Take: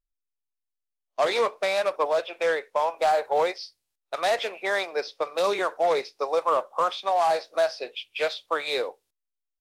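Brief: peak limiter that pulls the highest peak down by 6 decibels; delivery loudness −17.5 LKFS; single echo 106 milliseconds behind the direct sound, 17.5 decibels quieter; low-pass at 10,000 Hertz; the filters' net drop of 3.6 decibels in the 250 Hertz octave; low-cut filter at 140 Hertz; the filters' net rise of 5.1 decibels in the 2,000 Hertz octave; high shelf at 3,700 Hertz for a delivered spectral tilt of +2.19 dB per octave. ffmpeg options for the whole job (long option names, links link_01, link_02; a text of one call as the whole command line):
ffmpeg -i in.wav -af "highpass=140,lowpass=10000,equalizer=frequency=250:width_type=o:gain=-6.5,equalizer=frequency=2000:width_type=o:gain=8,highshelf=frequency=3700:gain=-6.5,alimiter=limit=-17.5dB:level=0:latency=1,aecho=1:1:106:0.133,volume=10.5dB" out.wav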